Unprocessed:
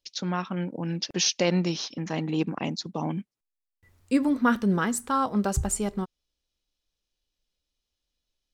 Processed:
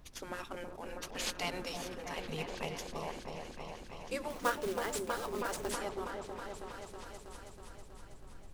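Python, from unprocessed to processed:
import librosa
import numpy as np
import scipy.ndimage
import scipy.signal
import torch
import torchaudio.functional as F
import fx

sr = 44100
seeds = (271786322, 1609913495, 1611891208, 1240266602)

y = fx.cvsd(x, sr, bps=64000)
y = fx.low_shelf_res(y, sr, hz=160.0, db=-8.0, q=3.0)
y = fx.spec_gate(y, sr, threshold_db=-10, keep='weak')
y = fx.quant_companded(y, sr, bits=4, at=(4.3, 5.72))
y = fx.dmg_noise_colour(y, sr, seeds[0], colour='brown', level_db=-48.0)
y = fx.echo_opening(y, sr, ms=322, hz=750, octaves=1, feedback_pct=70, wet_db=-3)
y = y * librosa.db_to_amplitude(-5.5)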